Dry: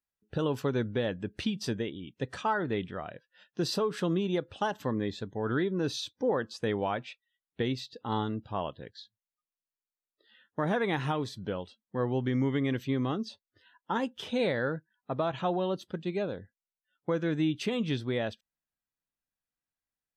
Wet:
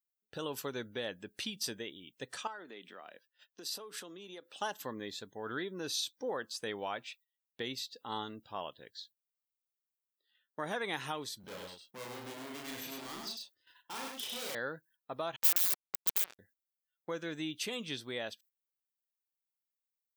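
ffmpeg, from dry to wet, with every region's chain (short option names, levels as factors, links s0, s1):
-filter_complex "[0:a]asettb=1/sr,asplit=3[s0][s1][s2];[s0]atrim=end=2.474[s3];[s1]atrim=start=2.47:end=4.55,asetpts=PTS-STARTPTS,afade=t=in:d=0.004:c=qsin,afade=t=out:st=2.076:d=0.004:c=qsin,highpass=f=200:w=0.5412,highpass=f=200:w=1.3066,acompressor=threshold=0.0112:ratio=3:attack=3.2:release=140:knee=1:detection=peak[s4];[s2]atrim=start=4.546[s5];[s3][s4]acrossfade=d=0.004:c1=hsin:c2=qsin[s6];[s6][s5]acrossfade=d=0.004:c1=qsin:c2=hsin,asettb=1/sr,asplit=3[s7][s8][s9];[s7]atrim=end=11.404[s10];[s8]atrim=start=11.4:end=14.55,asetpts=PTS-STARTPTS,afade=t=in:d=0.004:c=qsin,afade=t=out:st=3.146:d=0.004:c=qsin,asoftclip=type=hard:threshold=0.015,asplit=2[s11][s12];[s12]adelay=34,volume=0.794[s13];[s11][s13]amix=inputs=2:normalize=0,atrim=end_sample=138915,aecho=1:1:100:0.668,atrim=end_sample=138915[s14];[s9]atrim=start=14.546[s15];[s10][s14]acrossfade=d=0.004:c1=hsin:c2=qsin[s16];[s16][s15]acrossfade=d=0.004:c1=qsin:c2=hsin,asettb=1/sr,asplit=3[s17][s18][s19];[s17]atrim=end=15.364[s20];[s18]atrim=start=15.36:end=16.39,asetpts=PTS-STARTPTS,afade=t=in:d=0.004:c=qsin,afade=t=out:st=1.026:d=0.004:c=qsin,highshelf=f=5200:g=10,acrusher=bits=3:mix=0:aa=0.5,aeval=exprs='(mod(22.4*val(0)+1,2)-1)/22.4':c=same[s21];[s19]atrim=start=16.386[s22];[s20][s21]acrossfade=d=0.004:c1=hsin:c2=qsin[s23];[s23][s22]acrossfade=d=0.004:c1=qsin:c2=hsin,agate=range=0.224:threshold=0.00126:ratio=16:detection=peak,aemphasis=mode=production:type=riaa,volume=0.501"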